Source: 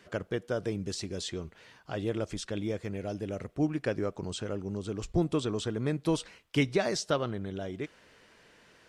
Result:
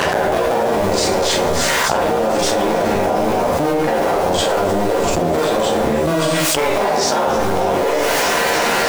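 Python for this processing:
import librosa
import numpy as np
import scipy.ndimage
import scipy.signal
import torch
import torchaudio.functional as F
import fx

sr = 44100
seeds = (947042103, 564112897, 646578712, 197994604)

y = fx.cycle_switch(x, sr, every=2, mode='muted')
y = fx.low_shelf(y, sr, hz=87.0, db=-6.5)
y = fx.doubler(y, sr, ms=13.0, db=-6)
y = fx.rev_schroeder(y, sr, rt60_s=0.51, comb_ms=32, drr_db=-8.0)
y = fx.rider(y, sr, range_db=10, speed_s=0.5)
y = fx.peak_eq(y, sr, hz=760.0, db=10.0, octaves=1.5)
y = fx.echo_wet_highpass(y, sr, ms=308, feedback_pct=67, hz=5400.0, wet_db=-9.5)
y = fx.env_flatten(y, sr, amount_pct=100)
y = F.gain(torch.from_numpy(y), -1.0).numpy()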